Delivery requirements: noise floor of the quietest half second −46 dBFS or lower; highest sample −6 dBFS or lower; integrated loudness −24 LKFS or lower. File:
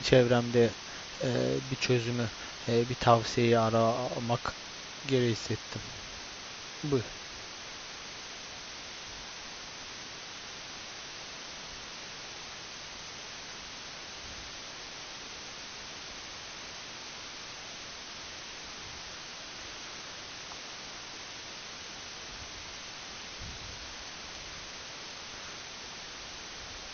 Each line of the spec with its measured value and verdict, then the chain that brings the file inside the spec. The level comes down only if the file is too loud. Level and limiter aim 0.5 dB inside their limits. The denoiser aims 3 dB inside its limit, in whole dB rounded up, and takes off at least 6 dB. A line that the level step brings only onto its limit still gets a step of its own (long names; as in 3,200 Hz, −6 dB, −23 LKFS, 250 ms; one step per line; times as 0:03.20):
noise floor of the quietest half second −44 dBFS: out of spec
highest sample −7.5 dBFS: in spec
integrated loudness −35.0 LKFS: in spec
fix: broadband denoise 6 dB, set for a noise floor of −44 dBFS